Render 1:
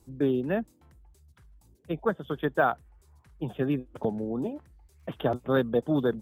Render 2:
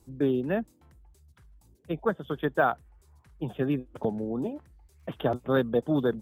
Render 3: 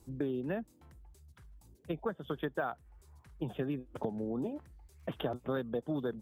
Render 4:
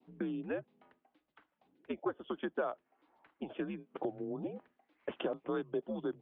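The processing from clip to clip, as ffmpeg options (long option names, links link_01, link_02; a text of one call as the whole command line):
ffmpeg -i in.wav -af anull out.wav
ffmpeg -i in.wav -af "acompressor=threshold=-33dB:ratio=4" out.wav
ffmpeg -i in.wav -af "adynamicequalizer=threshold=0.00158:dfrequency=1500:dqfactor=1.3:tfrequency=1500:tqfactor=1.3:attack=5:release=100:ratio=0.375:range=2.5:mode=cutabove:tftype=bell,highpass=frequency=360:width_type=q:width=0.5412,highpass=frequency=360:width_type=q:width=1.307,lowpass=frequency=3300:width_type=q:width=0.5176,lowpass=frequency=3300:width_type=q:width=0.7071,lowpass=frequency=3300:width_type=q:width=1.932,afreqshift=-90,volume=1.5dB" out.wav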